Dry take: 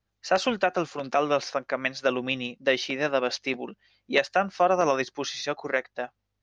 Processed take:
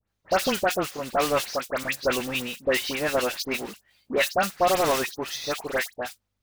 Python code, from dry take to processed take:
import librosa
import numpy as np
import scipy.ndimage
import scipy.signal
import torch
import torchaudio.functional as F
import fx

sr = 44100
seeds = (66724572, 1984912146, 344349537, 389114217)

y = fx.block_float(x, sr, bits=3)
y = fx.dispersion(y, sr, late='highs', ms=80.0, hz=2100.0)